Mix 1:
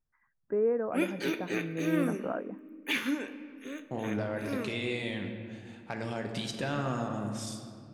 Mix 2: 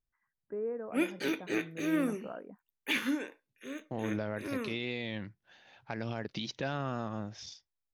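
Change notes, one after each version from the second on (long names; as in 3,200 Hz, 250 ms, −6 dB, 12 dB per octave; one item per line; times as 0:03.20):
first voice −8.5 dB
second voice: add Butterworth low-pass 6,200 Hz 72 dB per octave
reverb: off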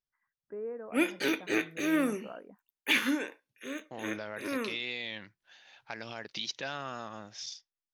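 second voice: add spectral tilt +2.5 dB per octave
background +5.5 dB
master: add low-shelf EQ 420 Hz −5.5 dB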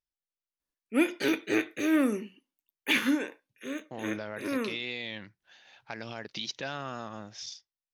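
first voice: muted
master: add low-shelf EQ 420 Hz +5.5 dB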